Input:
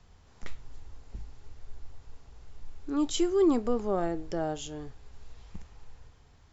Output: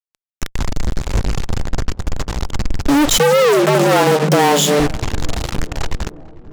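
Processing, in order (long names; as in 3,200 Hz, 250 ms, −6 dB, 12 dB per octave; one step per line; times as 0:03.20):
fuzz pedal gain 54 dB, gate −46 dBFS
feedback echo with a low-pass in the loop 446 ms, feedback 73%, low-pass 1,300 Hz, level −21 dB
0:03.18–0:04.80: frequency shifter +140 Hz
level +2.5 dB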